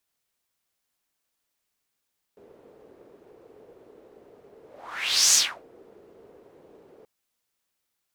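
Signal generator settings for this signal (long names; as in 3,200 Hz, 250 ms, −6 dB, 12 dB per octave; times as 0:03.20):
pass-by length 4.68 s, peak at 0:02.97, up 0.74 s, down 0.31 s, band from 430 Hz, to 6,400 Hz, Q 3.9, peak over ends 35 dB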